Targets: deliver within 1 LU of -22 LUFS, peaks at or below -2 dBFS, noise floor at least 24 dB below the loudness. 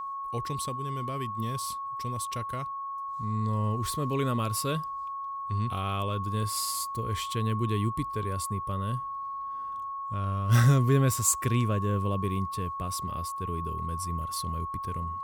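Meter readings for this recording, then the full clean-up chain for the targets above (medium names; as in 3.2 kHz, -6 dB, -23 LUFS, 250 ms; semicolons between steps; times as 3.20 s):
steady tone 1.1 kHz; tone level -33 dBFS; loudness -30.0 LUFS; peak level -11.0 dBFS; loudness target -22.0 LUFS
-> band-stop 1.1 kHz, Q 30; trim +8 dB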